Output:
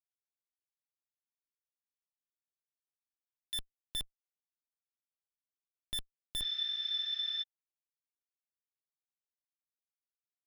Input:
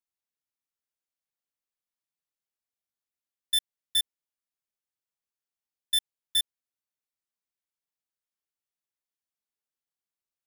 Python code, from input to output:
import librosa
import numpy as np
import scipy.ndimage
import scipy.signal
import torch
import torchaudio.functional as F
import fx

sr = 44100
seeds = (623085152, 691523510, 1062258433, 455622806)

y = fx.schmitt(x, sr, flips_db=-46.5)
y = fx.spec_repair(y, sr, seeds[0], start_s=6.44, length_s=0.96, low_hz=1200.0, high_hz=6400.0, source='before')
y = y * 10.0 ** (4.0 / 20.0)